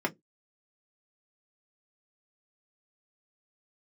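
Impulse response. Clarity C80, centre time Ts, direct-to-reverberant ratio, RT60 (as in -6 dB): 37.0 dB, 7 ms, 0.0 dB, 0.15 s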